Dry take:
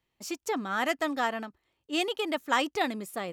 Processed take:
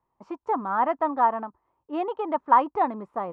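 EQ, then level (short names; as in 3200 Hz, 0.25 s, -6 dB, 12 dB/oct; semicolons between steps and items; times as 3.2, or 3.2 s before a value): synth low-pass 1000 Hz, resonance Q 4.9; 0.0 dB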